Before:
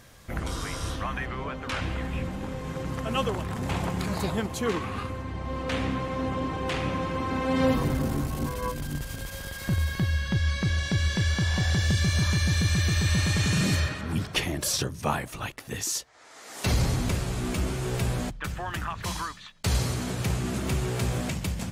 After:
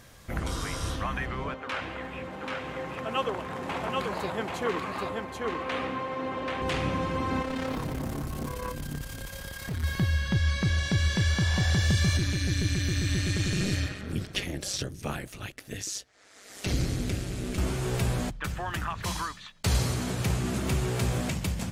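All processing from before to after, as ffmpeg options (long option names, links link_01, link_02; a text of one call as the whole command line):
ffmpeg -i in.wav -filter_complex "[0:a]asettb=1/sr,asplit=3[link_01][link_02][link_03];[link_01]atrim=end=1.544[link_04];[link_02]atrim=start=1.54:end=6.62,asetpts=PTS-STARTPTS,afade=type=in:duration=0.004:curve=qsin,afade=type=out:start_time=5.076:duration=0.004:curve=qsin,highpass=62,bass=frequency=250:gain=-13,treble=frequency=4000:gain=-10,aecho=1:1:784:0.708,atrim=end_sample=224028[link_05];[link_03]atrim=start=6.616[link_06];[link_04][link_05]acrossfade=duration=0.004:curve1=hsin:curve2=qsin[link_07];[link_07][link_06]acrossfade=duration=0.004:curve1=qsin:curve2=hsin,asettb=1/sr,asplit=3[link_08][link_09][link_10];[link_08]atrim=end=7.424[link_11];[link_09]atrim=start=7.42:end=9.84,asetpts=PTS-STARTPTS,afade=type=in:duration=0.004:curve=qsin,afade=type=out:start_time=2.416:duration=0.004:curve=qsin,volume=27.5dB,asoftclip=hard,volume=-27.5dB,tremolo=f=34:d=0.519[link_12];[link_10]atrim=start=9.836[link_13];[link_11][link_12]acrossfade=duration=0.004:curve1=hsin:curve2=qsin[link_14];[link_14][link_13]acrossfade=duration=0.004:curve1=qsin:curve2=hsin,asettb=1/sr,asplit=3[link_15][link_16][link_17];[link_15]atrim=end=12.174[link_18];[link_16]atrim=start=12.17:end=17.58,asetpts=PTS-STARTPTS,afade=type=in:duration=0.004:curve=qsin,afade=type=out:start_time=5.406:duration=0.004:curve=qsin,acrossover=split=8200[link_19][link_20];[link_20]acompressor=threshold=-45dB:ratio=4:attack=1:release=60[link_21];[link_19][link_21]amix=inputs=2:normalize=0,equalizer=frequency=950:width_type=o:width=0.74:gain=-11,tremolo=f=200:d=0.75[link_22];[link_17]atrim=start=17.576[link_23];[link_18][link_22]acrossfade=duration=0.004:curve1=hsin:curve2=qsin[link_24];[link_24][link_23]acrossfade=duration=0.004:curve1=qsin:curve2=hsin" out.wav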